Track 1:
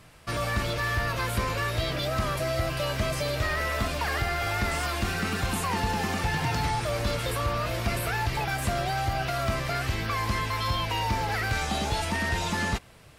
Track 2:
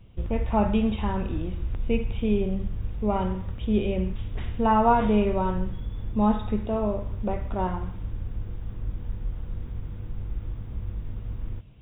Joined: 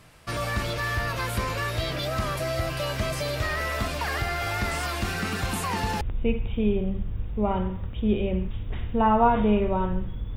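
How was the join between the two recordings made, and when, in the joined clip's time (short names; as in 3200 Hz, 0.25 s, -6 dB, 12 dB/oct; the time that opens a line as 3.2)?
track 1
6.01 switch to track 2 from 1.66 s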